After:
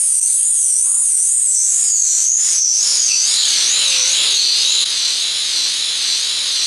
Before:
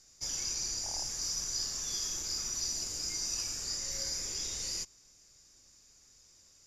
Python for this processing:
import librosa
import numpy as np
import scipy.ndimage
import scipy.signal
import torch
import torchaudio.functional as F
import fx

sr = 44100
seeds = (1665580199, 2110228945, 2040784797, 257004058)

y = fx.notch(x, sr, hz=5500.0, q=5.2)
y = fx.wow_flutter(y, sr, seeds[0], rate_hz=2.1, depth_cents=130.0)
y = np.repeat(y[::3], 3)[:len(y)]
y = fx.weighting(y, sr, curve='ITU-R 468')
y = fx.formant_shift(y, sr, semitones=5)
y = fx.filter_sweep_lowpass(y, sr, from_hz=9000.0, to_hz=4000.0, start_s=1.24, end_s=3.7, q=6.8)
y = fx.env_flatten(y, sr, amount_pct=100)